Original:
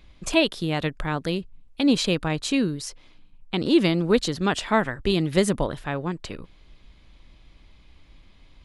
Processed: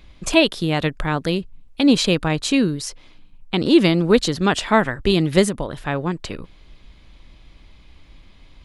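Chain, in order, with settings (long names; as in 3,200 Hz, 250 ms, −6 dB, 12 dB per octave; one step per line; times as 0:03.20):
0:05.44–0:05.86: downward compressor 6 to 1, threshold −26 dBFS, peak gain reduction 8.5 dB
level +5 dB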